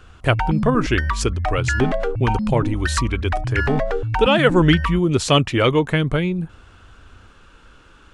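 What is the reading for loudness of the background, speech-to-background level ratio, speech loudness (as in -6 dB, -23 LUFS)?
-24.0 LUFS, 3.5 dB, -20.5 LUFS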